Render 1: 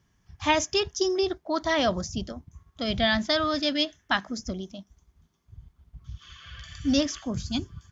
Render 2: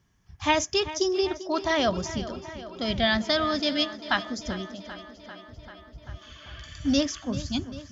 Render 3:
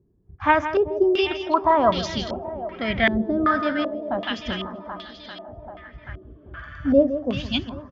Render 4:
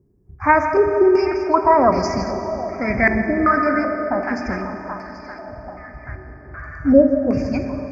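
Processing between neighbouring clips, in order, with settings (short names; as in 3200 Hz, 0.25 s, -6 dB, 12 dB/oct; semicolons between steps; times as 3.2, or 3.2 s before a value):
tape echo 0.392 s, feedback 76%, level -13.5 dB, low-pass 5800 Hz
echo 0.16 s -11 dB; stepped low-pass 2.6 Hz 390–4000 Hz; gain +2 dB
elliptic band-stop 2300–4900 Hz, stop band 40 dB; reverb RT60 4.0 s, pre-delay 4 ms, DRR 6 dB; gain +4 dB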